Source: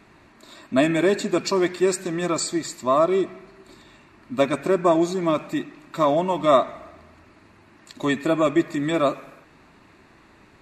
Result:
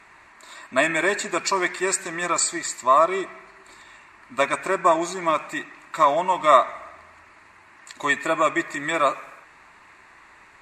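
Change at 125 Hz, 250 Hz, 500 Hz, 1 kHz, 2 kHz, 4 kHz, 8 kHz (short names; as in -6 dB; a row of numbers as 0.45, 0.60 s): -10.5, -8.5, -3.0, +5.0, +7.0, +0.5, +5.5 dB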